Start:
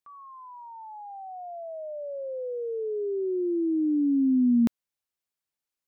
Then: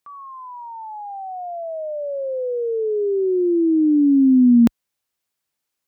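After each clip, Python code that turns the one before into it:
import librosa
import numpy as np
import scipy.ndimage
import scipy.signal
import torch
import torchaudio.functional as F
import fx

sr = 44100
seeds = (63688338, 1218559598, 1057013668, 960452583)

y = scipy.signal.sosfilt(scipy.signal.butter(2, 43.0, 'highpass', fs=sr, output='sos'), x)
y = y * 10.0 ** (9.0 / 20.0)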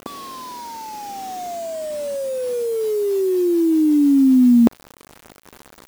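y = fx.bin_compress(x, sr, power=0.4)
y = fx.quant_dither(y, sr, seeds[0], bits=6, dither='none')
y = y * 10.0 ** (-1.0 / 20.0)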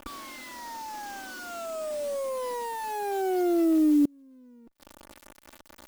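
y = fx.lower_of_two(x, sr, delay_ms=3.4)
y = fx.gate_flip(y, sr, shuts_db=-10.0, range_db=-34)
y = y * 10.0 ** (-5.5 / 20.0)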